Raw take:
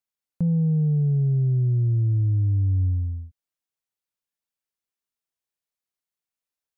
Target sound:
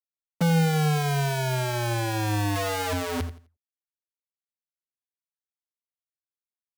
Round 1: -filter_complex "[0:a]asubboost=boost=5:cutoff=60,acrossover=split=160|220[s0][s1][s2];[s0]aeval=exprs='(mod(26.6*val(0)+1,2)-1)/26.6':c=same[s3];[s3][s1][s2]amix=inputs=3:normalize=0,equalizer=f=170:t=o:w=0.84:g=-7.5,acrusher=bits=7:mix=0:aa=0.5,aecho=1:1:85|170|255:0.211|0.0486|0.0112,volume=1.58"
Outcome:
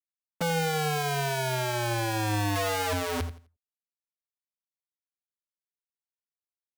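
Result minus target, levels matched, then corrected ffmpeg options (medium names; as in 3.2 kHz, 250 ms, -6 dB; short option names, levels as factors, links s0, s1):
125 Hz band -3.5 dB
-filter_complex "[0:a]asubboost=boost=5:cutoff=60,acrossover=split=160|220[s0][s1][s2];[s0]aeval=exprs='(mod(26.6*val(0)+1,2)-1)/26.6':c=same[s3];[s3][s1][s2]amix=inputs=3:normalize=0,equalizer=f=170:t=o:w=0.84:g=3.5,acrusher=bits=7:mix=0:aa=0.5,aecho=1:1:85|170|255:0.211|0.0486|0.0112,volume=1.58"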